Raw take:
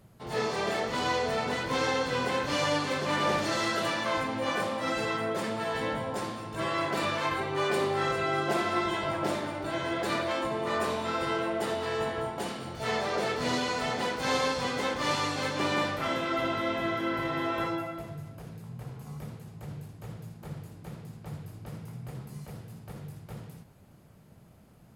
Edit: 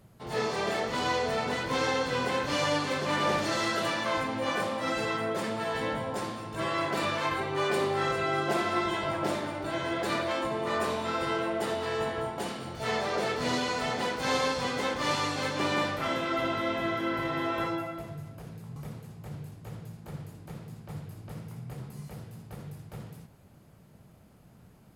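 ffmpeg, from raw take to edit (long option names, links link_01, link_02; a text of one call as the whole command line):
ffmpeg -i in.wav -filter_complex "[0:a]asplit=2[link_01][link_02];[link_01]atrim=end=18.762[link_03];[link_02]atrim=start=19.128[link_04];[link_03][link_04]acrossfade=duration=0.004:curve1=hsin:curve2=hsin" out.wav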